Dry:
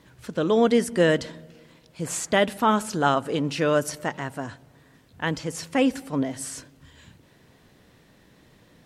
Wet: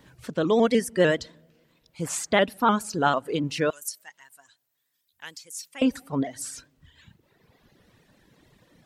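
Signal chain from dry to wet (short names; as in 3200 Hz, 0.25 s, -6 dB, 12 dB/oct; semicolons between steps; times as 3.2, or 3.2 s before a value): 3.7–5.82 pre-emphasis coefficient 0.97; reverb removal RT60 1.8 s; shaped vibrato saw up 6.7 Hz, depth 100 cents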